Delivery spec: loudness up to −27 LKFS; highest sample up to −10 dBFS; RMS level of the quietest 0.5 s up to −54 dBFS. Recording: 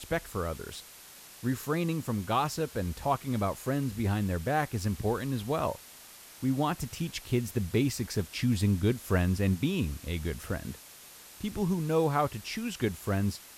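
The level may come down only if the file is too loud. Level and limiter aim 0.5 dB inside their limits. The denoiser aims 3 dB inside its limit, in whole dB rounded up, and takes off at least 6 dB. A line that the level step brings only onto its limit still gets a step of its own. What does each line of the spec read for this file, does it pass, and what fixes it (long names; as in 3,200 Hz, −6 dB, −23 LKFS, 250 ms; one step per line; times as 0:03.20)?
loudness −31.0 LKFS: in spec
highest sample −14.5 dBFS: in spec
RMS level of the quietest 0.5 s −51 dBFS: out of spec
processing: broadband denoise 6 dB, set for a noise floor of −51 dBFS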